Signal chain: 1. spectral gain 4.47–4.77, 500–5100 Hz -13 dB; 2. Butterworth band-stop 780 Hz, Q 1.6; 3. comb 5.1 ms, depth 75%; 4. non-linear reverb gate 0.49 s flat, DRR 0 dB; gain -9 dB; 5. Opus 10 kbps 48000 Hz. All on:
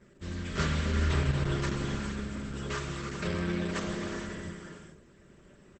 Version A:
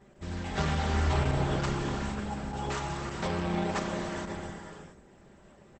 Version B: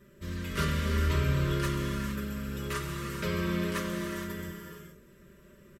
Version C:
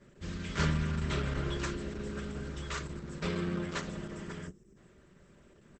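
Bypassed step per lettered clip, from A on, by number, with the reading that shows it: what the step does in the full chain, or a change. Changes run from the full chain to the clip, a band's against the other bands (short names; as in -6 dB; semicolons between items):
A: 2, 1 kHz band +6.5 dB; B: 5, crest factor change -1.5 dB; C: 4, momentary loudness spread change -2 LU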